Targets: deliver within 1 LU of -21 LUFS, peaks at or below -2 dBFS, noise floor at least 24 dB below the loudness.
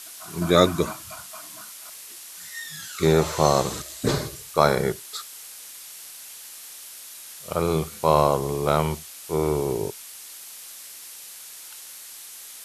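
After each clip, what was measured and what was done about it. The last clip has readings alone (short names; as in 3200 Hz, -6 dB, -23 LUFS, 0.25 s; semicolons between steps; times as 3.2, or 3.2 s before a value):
noise floor -42 dBFS; noise floor target -48 dBFS; loudness -23.5 LUFS; peak -2.0 dBFS; loudness target -21.0 LUFS
-> denoiser 6 dB, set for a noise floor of -42 dBFS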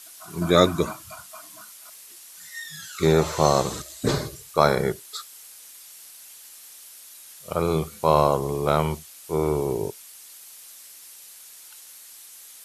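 noise floor -46 dBFS; noise floor target -48 dBFS
-> denoiser 6 dB, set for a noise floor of -46 dBFS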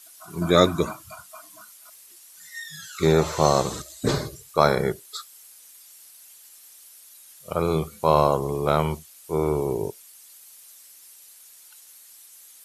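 noise floor -50 dBFS; loudness -23.5 LUFS; peak -2.5 dBFS; loudness target -21.0 LUFS
-> gain +2.5 dB; limiter -2 dBFS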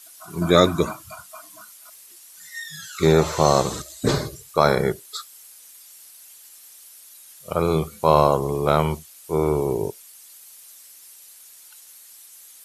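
loudness -21.5 LUFS; peak -2.0 dBFS; noise floor -47 dBFS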